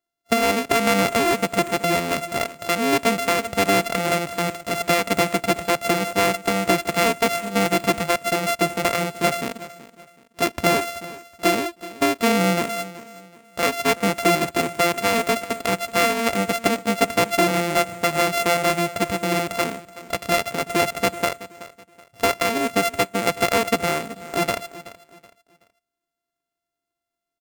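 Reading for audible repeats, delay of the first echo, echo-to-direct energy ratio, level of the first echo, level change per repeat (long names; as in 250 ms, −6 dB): 2, 376 ms, −16.5 dB, −17.0 dB, −10.0 dB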